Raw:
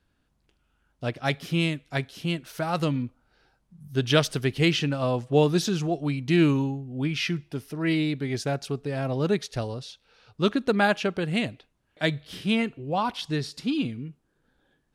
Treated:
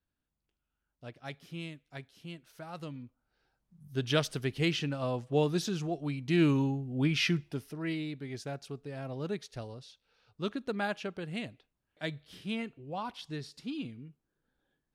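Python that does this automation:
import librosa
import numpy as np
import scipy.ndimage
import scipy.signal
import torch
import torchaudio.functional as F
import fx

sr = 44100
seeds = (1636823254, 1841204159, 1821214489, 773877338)

y = fx.gain(x, sr, db=fx.line((3.0, -16.5), (3.88, -7.5), (6.22, -7.5), (6.8, -1.0), (7.37, -1.0), (7.99, -11.5)))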